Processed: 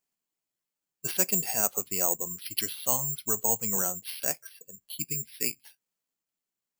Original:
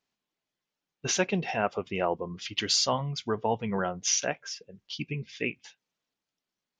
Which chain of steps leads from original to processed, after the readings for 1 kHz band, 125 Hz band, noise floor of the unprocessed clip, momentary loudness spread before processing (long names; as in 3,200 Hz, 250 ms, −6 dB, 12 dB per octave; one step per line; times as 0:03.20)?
−6.5 dB, −6.5 dB, below −85 dBFS, 13 LU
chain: bad sample-rate conversion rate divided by 6×, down filtered, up zero stuff
level −6.5 dB